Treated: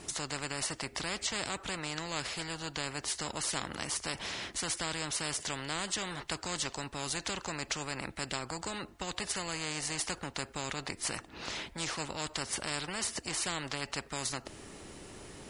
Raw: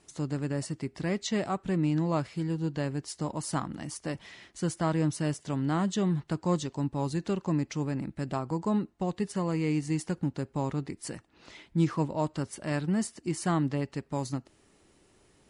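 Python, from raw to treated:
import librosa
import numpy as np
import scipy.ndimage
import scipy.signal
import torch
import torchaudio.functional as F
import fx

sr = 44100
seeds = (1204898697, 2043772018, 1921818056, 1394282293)

y = fx.spectral_comp(x, sr, ratio=4.0)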